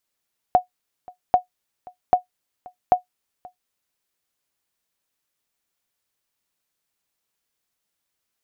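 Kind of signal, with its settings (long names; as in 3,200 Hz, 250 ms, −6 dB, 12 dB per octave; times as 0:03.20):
ping with an echo 728 Hz, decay 0.12 s, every 0.79 s, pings 4, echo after 0.53 s, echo −25 dB −5.5 dBFS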